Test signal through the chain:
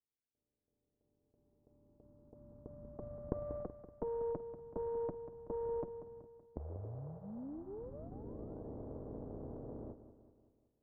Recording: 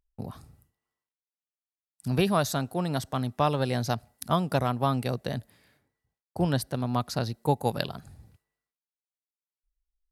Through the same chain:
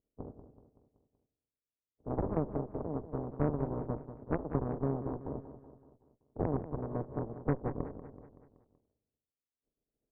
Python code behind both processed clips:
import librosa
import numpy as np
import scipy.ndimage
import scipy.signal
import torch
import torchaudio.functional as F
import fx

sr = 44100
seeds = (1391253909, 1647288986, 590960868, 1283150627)

y = fx.spec_flatten(x, sr, power=0.1)
y = scipy.signal.sosfilt(scipy.signal.cheby2(4, 70, 2300.0, 'lowpass', fs=sr, output='sos'), y)
y = fx.notch_comb(y, sr, f0_hz=180.0)
y = fx.cheby_harmonics(y, sr, harmonics=(4,), levels_db=(-9,), full_scale_db=-25.5)
y = fx.echo_feedback(y, sr, ms=189, feedback_pct=52, wet_db=-12.0)
y = F.gain(torch.from_numpy(y), 5.5).numpy()